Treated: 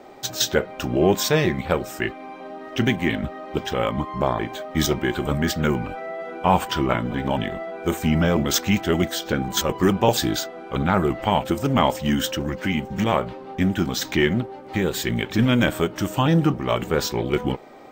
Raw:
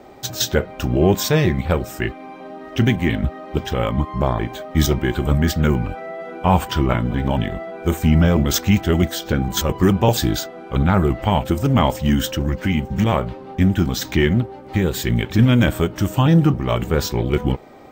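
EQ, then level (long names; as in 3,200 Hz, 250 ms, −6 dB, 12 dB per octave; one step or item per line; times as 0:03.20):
parametric band 60 Hz −12.5 dB 2.6 octaves
high-shelf EQ 12,000 Hz −4.5 dB
0.0 dB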